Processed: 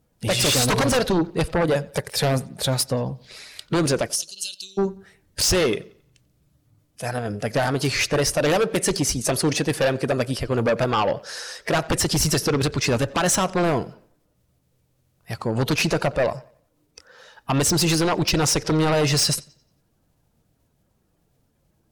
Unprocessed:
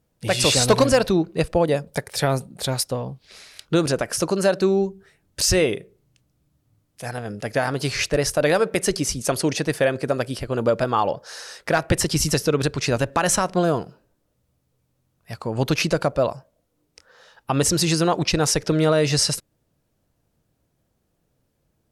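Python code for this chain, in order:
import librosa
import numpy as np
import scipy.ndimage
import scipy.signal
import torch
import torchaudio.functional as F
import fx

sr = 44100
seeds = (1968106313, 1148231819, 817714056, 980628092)

p1 = fx.spec_quant(x, sr, step_db=15)
p2 = fx.ellip_highpass(p1, sr, hz=3000.0, order=4, stop_db=40, at=(4.07, 4.77), fade=0.02)
p3 = fx.fold_sine(p2, sr, drive_db=8, ceiling_db=-7.5)
p4 = p3 + fx.echo_bbd(p3, sr, ms=90, stages=4096, feedback_pct=38, wet_db=-23.5, dry=0)
y = F.gain(torch.from_numpy(p4), -8.0).numpy()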